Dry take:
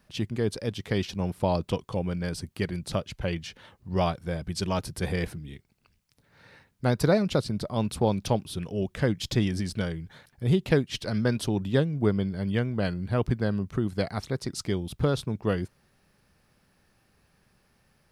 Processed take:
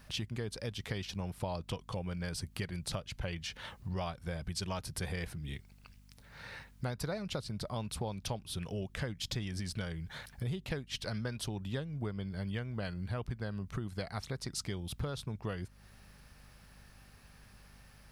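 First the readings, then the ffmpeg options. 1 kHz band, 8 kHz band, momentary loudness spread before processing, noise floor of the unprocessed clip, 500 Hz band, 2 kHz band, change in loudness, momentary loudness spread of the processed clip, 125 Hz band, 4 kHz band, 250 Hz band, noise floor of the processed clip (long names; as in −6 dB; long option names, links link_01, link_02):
−10.5 dB, −3.5 dB, 7 LU, −67 dBFS, −14.0 dB, −7.5 dB, −11.0 dB, 20 LU, −9.5 dB, −5.0 dB, −13.0 dB, −59 dBFS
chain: -af "equalizer=frequency=300:width_type=o:width=1.9:gain=-8,acompressor=threshold=-44dB:ratio=5,aeval=exprs='val(0)+0.000501*(sin(2*PI*50*n/s)+sin(2*PI*2*50*n/s)/2+sin(2*PI*3*50*n/s)/3+sin(2*PI*4*50*n/s)/4+sin(2*PI*5*50*n/s)/5)':channel_layout=same,volume=7.5dB"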